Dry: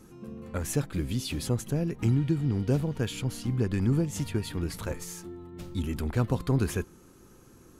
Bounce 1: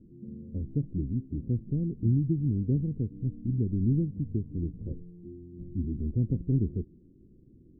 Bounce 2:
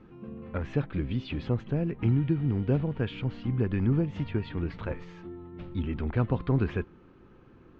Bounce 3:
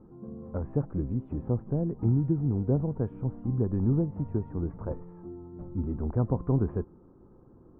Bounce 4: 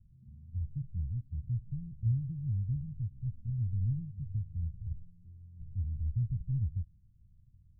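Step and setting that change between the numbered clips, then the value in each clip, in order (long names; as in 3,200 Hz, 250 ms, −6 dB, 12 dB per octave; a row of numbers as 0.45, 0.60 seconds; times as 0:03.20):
inverse Chebyshev low-pass filter, stop band from: 1,500, 11,000, 4,400, 530 Hertz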